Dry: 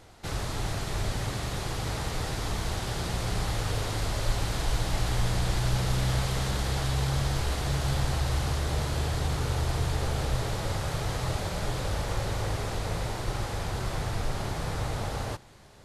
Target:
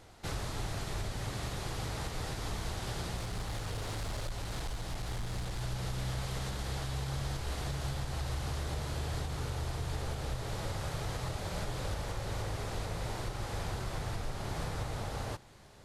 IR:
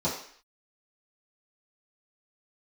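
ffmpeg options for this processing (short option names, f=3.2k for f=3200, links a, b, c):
-filter_complex "[0:a]alimiter=limit=-23.5dB:level=0:latency=1:release=386,asettb=1/sr,asplit=3[a][b][c];[a]atrim=end=3.164[d];[b]atrim=start=3.16:end=5.62,asetpts=PTS-STARTPTS,afade=t=in:d=0.004:c=qsin,afade=t=out:st=2.456:d=0.004:c=qsin,asoftclip=type=hard:threshold=-29.5dB[e];[c]atrim=start=5.616[f];[d][e]acrossfade=d=0.004:c1=hsin:c2=qsin[g];[g][f]acrossfade=d=0.004:c1=qsin:c2=hsin,volume=-3dB"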